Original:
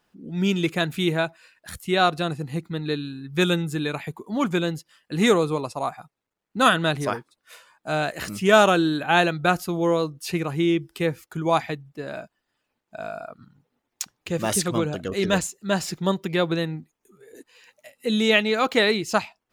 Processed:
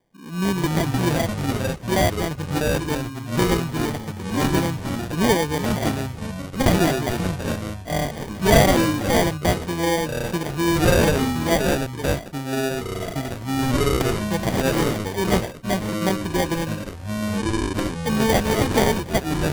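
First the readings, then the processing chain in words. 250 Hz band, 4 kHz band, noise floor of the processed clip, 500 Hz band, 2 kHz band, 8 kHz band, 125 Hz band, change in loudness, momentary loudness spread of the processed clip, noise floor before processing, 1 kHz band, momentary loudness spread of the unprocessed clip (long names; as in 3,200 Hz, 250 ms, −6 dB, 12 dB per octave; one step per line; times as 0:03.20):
+3.5 dB, 0.0 dB, −35 dBFS, +1.5 dB, −0.5 dB, +4.0 dB, +6.5 dB, +1.0 dB, 9 LU, −80 dBFS, +0.5 dB, 16 LU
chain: decimation without filtering 33×
delay with pitch and tempo change per echo 138 ms, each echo −4 semitones, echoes 3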